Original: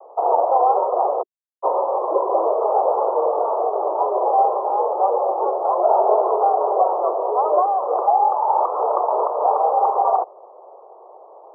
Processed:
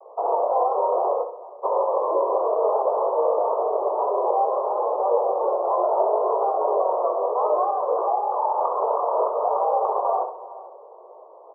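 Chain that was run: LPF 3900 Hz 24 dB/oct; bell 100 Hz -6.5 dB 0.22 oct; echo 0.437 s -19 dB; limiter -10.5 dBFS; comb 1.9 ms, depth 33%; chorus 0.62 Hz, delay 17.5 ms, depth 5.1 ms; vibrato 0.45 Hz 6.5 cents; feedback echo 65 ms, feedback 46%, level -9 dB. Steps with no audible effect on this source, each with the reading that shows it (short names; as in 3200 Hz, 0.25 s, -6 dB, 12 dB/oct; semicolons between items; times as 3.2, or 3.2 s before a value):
LPF 3900 Hz: input band ends at 1400 Hz; bell 100 Hz: input band starts at 300 Hz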